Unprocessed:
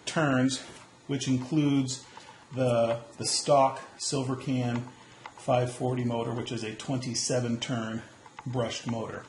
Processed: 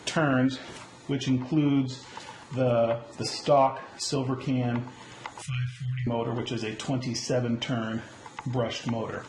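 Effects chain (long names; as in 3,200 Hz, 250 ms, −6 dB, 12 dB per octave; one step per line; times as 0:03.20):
treble cut that deepens with the level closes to 2,900 Hz, closed at −25 dBFS
0:05.42–0:06.07: inverse Chebyshev band-stop filter 250–950 Hz, stop band 40 dB
in parallel at +0.5 dB: downward compressor, threshold −39 dBFS, peak gain reduction 19 dB
on the sum: harmonic generator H 8 −39 dB, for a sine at −11 dBFS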